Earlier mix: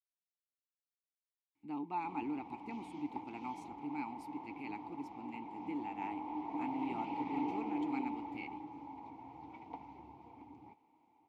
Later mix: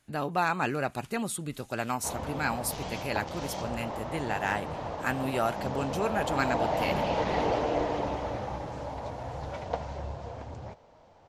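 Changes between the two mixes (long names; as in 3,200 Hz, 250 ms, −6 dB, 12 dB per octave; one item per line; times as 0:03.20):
speech: entry −1.55 s
master: remove formant filter u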